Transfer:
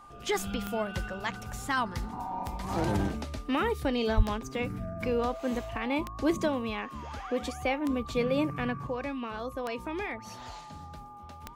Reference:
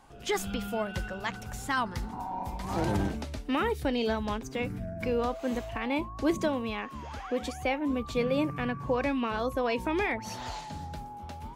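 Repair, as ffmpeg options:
-filter_complex "[0:a]adeclick=t=4,bandreject=f=1200:w=30,asplit=3[s0][s1][s2];[s0]afade=t=out:st=4.16:d=0.02[s3];[s1]highpass=f=140:w=0.5412,highpass=f=140:w=1.3066,afade=t=in:st=4.16:d=0.02,afade=t=out:st=4.28:d=0.02[s4];[s2]afade=t=in:st=4.28:d=0.02[s5];[s3][s4][s5]amix=inputs=3:normalize=0,asetnsamples=n=441:p=0,asendcmd='8.87 volume volume 6dB',volume=1"

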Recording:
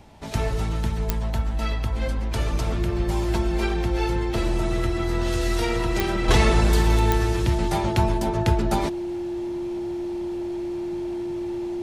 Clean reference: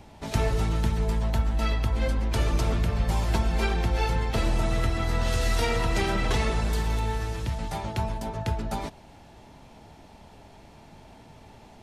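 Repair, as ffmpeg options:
-af "adeclick=t=4,bandreject=f=350:w=30,asetnsamples=n=441:p=0,asendcmd='6.28 volume volume -7.5dB',volume=1"

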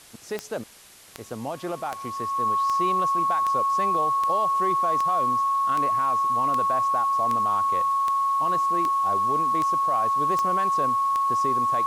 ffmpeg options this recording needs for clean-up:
-af "adeclick=t=4,bandreject=f=1100:w=30,afwtdn=0.004"

